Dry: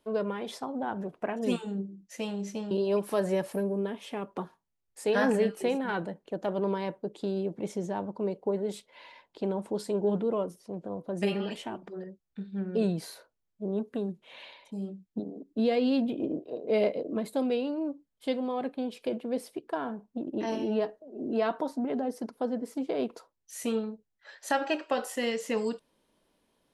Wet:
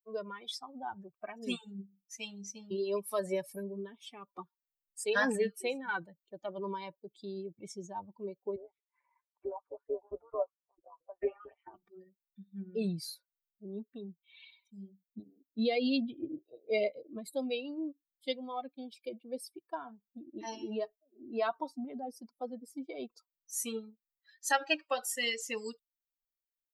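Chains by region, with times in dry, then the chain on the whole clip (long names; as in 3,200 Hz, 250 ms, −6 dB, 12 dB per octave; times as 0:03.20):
0:08.56–0:11.74: low-pass filter 1,900 Hz 24 dB per octave + auto-filter high-pass saw up 4.5 Hz 340–1,500 Hz + amplitude modulation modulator 140 Hz, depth 50%
whole clip: spectral dynamics exaggerated over time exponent 2; tilt shelving filter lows −6 dB, about 1,300 Hz; level +3 dB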